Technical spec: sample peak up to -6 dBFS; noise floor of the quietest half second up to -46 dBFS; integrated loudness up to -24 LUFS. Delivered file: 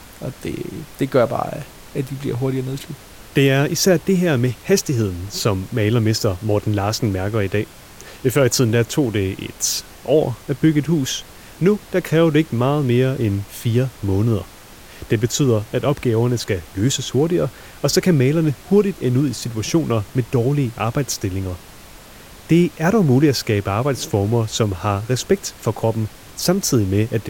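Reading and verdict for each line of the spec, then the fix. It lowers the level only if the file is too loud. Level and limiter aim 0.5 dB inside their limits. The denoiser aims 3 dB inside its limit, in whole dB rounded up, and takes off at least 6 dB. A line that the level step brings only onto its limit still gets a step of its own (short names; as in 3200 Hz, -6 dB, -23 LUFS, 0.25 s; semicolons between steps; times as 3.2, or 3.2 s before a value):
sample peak -4.5 dBFS: fail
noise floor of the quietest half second -41 dBFS: fail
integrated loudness -19.5 LUFS: fail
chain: denoiser 6 dB, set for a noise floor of -41 dBFS; gain -5 dB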